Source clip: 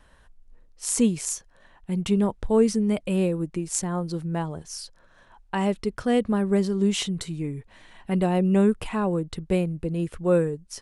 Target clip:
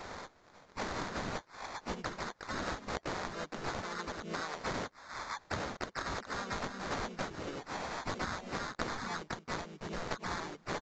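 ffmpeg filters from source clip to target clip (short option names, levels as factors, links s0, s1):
-filter_complex "[0:a]highpass=640,aemphasis=mode=production:type=75fm,afftfilt=real='re*lt(hypot(re,im),0.0631)':imag='im*lt(hypot(re,im),0.0631)':win_size=1024:overlap=0.75,adynamicequalizer=threshold=0.00126:dfrequency=1100:dqfactor=1.7:tfrequency=1100:tqfactor=1.7:attack=5:release=100:ratio=0.375:range=3.5:mode=boostabove:tftype=bell,acompressor=threshold=0.00355:ratio=6,acrusher=samples=17:mix=1:aa=0.000001,asplit=3[s0][s1][s2];[s1]asetrate=52444,aresample=44100,atempo=0.840896,volume=0.708[s3];[s2]asetrate=58866,aresample=44100,atempo=0.749154,volume=0.708[s4];[s0][s3][s4]amix=inputs=3:normalize=0,aresample=16000,aresample=44100,volume=3.35"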